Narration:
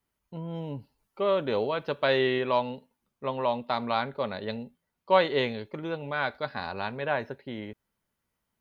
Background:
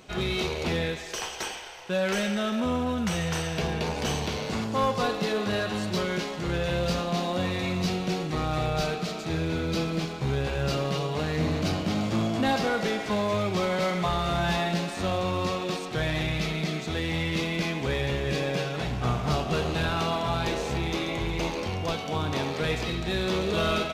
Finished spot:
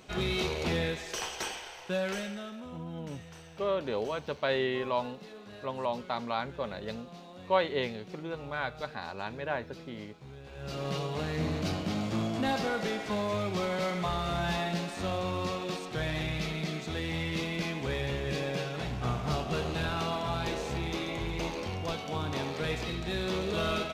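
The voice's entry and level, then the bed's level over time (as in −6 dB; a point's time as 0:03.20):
2.40 s, −5.0 dB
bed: 0:01.86 −2.5 dB
0:02.84 −20.5 dB
0:10.43 −20.5 dB
0:10.89 −5 dB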